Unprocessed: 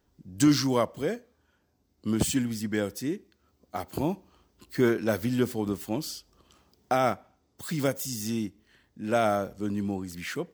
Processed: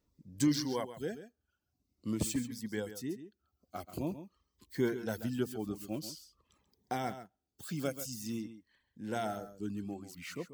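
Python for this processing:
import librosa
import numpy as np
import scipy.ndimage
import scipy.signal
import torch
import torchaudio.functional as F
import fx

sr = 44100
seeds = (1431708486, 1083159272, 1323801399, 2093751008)

p1 = fx.dereverb_blind(x, sr, rt60_s=0.81)
p2 = p1 + fx.echo_single(p1, sr, ms=135, db=-12.0, dry=0)
p3 = fx.notch_cascade(p2, sr, direction='falling', hz=0.48)
y = p3 * librosa.db_to_amplitude(-7.0)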